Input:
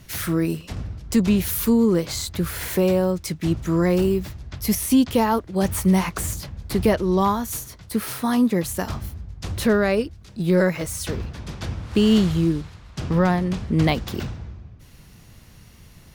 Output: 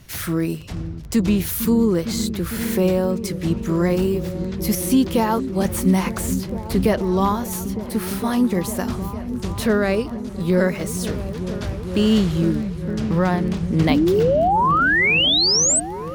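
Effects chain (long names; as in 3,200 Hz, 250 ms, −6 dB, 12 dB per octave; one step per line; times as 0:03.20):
surface crackle 13 per second −30 dBFS
sound drawn into the spectrogram rise, 0:13.89–0:15.80, 250–8,500 Hz −17 dBFS
echo whose low-pass opens from repeat to repeat 455 ms, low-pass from 200 Hz, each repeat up 1 octave, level −6 dB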